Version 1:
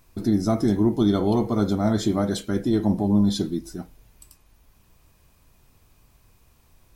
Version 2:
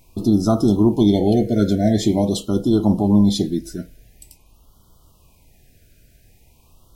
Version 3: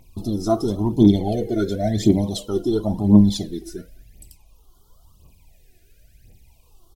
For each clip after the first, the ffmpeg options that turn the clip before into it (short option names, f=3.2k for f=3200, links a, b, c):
-af "afftfilt=real='re*(1-between(b*sr/1024,970*pow(2100/970,0.5+0.5*sin(2*PI*0.46*pts/sr))/1.41,970*pow(2100/970,0.5+0.5*sin(2*PI*0.46*pts/sr))*1.41))':imag='im*(1-between(b*sr/1024,970*pow(2100/970,0.5+0.5*sin(2*PI*0.46*pts/sr))/1.41,970*pow(2100/970,0.5+0.5*sin(2*PI*0.46*pts/sr))*1.41))':win_size=1024:overlap=0.75,volume=5dB"
-filter_complex "[0:a]asplit=2[a][b];[b]adelay=210,highpass=300,lowpass=3.4k,asoftclip=type=hard:threshold=-12.5dB,volume=-22dB[c];[a][c]amix=inputs=2:normalize=0,aphaser=in_gain=1:out_gain=1:delay=3:decay=0.66:speed=0.95:type=triangular,volume=-5.5dB"